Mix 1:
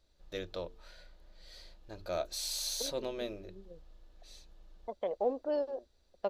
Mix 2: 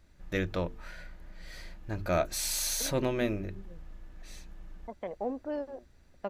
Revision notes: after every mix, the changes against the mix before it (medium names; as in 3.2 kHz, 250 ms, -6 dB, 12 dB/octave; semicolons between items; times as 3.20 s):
first voice +9.5 dB; master: add graphic EQ 125/250/500/2000/4000 Hz +10/+4/-6/+7/-11 dB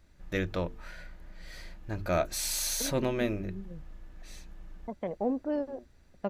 second voice: remove high-pass 510 Hz 6 dB/octave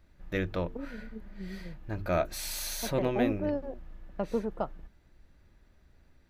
first voice: add peaking EQ 7.3 kHz -7.5 dB 1.4 oct; second voice: entry -2.05 s